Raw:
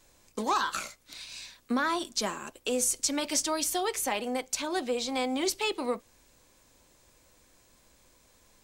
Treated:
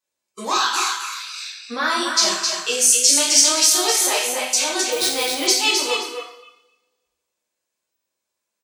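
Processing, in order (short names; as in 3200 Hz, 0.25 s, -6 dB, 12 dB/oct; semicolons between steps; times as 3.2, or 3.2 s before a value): HPF 570 Hz 6 dB/oct; feedback echo 0.261 s, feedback 30%, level -5 dB; spectral noise reduction 27 dB; dynamic EQ 5200 Hz, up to +8 dB, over -44 dBFS, Q 0.84; reverb RT60 0.75 s, pre-delay 3 ms, DRR -5 dB; 4.92–5.47 sample-rate reducer 14000 Hz, jitter 0%; gain +3 dB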